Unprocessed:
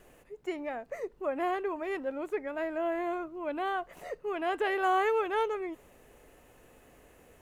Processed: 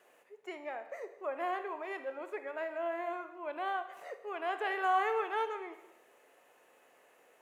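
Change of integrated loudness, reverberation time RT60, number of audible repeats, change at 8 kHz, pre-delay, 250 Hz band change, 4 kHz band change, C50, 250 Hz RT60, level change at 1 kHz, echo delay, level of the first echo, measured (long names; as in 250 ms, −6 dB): −4.0 dB, 0.95 s, no echo audible, can't be measured, 23 ms, −11.0 dB, −4.0 dB, 10.5 dB, 1.0 s, −2.0 dB, no echo audible, no echo audible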